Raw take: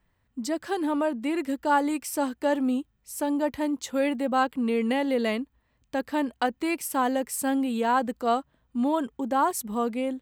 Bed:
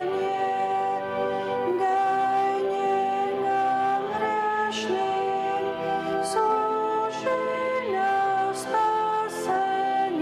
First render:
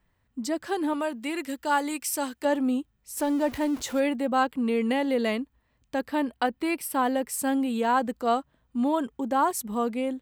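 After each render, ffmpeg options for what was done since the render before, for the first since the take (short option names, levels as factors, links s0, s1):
-filter_complex "[0:a]asettb=1/sr,asplit=3[s0][s1][s2];[s0]atrim=end=0.934[s3];[s1]atrim=start=0.93:end=2.45,asetpts=PTS-STARTPTS,afade=t=in:d=0.004:c=qsin,afade=t=out:st=1.516:d=0.004:c=qsin,tiltshelf=f=1400:g=-5[s4];[s2]atrim=start=2.446[s5];[s3][s4]acrossfade=d=0.004:c1=hsin:c2=qsin[s6];[s6][s5]acrossfade=d=0.004:c1=qsin:c2=hsin,asettb=1/sr,asplit=3[s7][s8][s9];[s7]atrim=end=3.174[s10];[s8]atrim=start=3.17:end=4,asetpts=PTS-STARTPTS,afade=t=in:d=0.004:c=qsin,afade=t=out:st=0.826:d=0.004:c=qsin,aeval=exprs='val(0)+0.5*0.0141*sgn(val(0))':c=same[s11];[s9]atrim=start=3.996[s12];[s10][s11]acrossfade=d=0.004:c1=hsin:c2=qsin[s13];[s13][s12]acrossfade=d=0.004:c1=qsin:c2=hsin,asettb=1/sr,asplit=3[s14][s15][s16];[s14]atrim=end=6.084[s17];[s15]atrim=start=6.08:end=7.28,asetpts=PTS-STARTPTS,afade=t=in:d=0.004:c=qsin,afade=t=out:st=1.196:d=0.004:c=qsin,equalizer=f=6700:t=o:w=0.26:g=-12[s18];[s16]atrim=start=7.276[s19];[s17][s18]acrossfade=d=0.004:c1=hsin:c2=qsin[s20];[s20][s19]acrossfade=d=0.004:c1=qsin:c2=hsin"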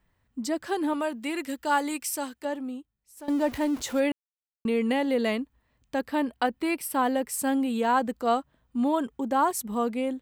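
-filter_complex "[0:a]asplit=4[s0][s1][s2][s3];[s0]atrim=end=3.28,asetpts=PTS-STARTPTS,afade=t=out:st=1.97:d=1.31:c=qua:silence=0.16788[s4];[s1]atrim=start=3.28:end=4.12,asetpts=PTS-STARTPTS,afade=t=in:d=0.004:c=hsin:silence=0.16788,afade=t=out:st=0.836:d=0.004:c=hsin[s5];[s2]atrim=start=4.12:end=4.65,asetpts=PTS-STARTPTS,volume=0[s6];[s3]atrim=start=4.65,asetpts=PTS-STARTPTS,afade=t=in:d=0.004:c=hsin[s7];[s4][s5][s6][s7]concat=n=4:v=0:a=1"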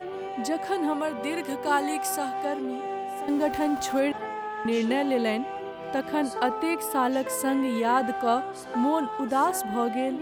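-filter_complex "[1:a]volume=0.376[s0];[0:a][s0]amix=inputs=2:normalize=0"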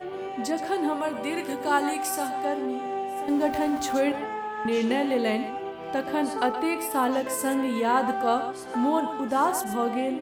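-filter_complex "[0:a]asplit=2[s0][s1];[s1]adelay=28,volume=0.224[s2];[s0][s2]amix=inputs=2:normalize=0,asplit=2[s3][s4];[s4]aecho=0:1:123:0.266[s5];[s3][s5]amix=inputs=2:normalize=0"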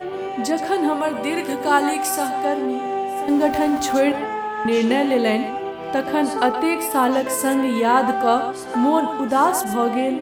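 -af "volume=2.11"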